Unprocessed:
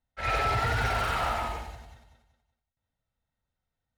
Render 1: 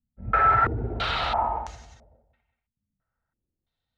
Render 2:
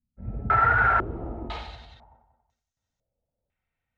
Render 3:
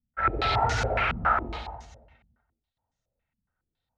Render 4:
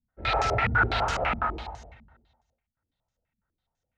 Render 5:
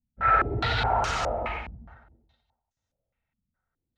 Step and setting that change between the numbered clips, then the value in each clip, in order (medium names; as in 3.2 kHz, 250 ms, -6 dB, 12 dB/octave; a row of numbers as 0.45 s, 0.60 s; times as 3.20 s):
step-sequenced low-pass, rate: 3 Hz, 2 Hz, 7.2 Hz, 12 Hz, 4.8 Hz